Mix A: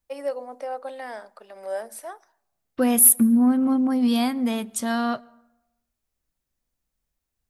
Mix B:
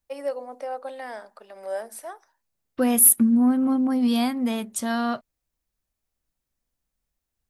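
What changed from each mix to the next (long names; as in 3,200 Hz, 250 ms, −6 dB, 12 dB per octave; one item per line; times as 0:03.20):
reverb: off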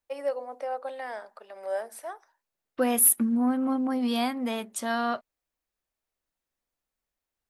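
master: add bass and treble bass −12 dB, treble −5 dB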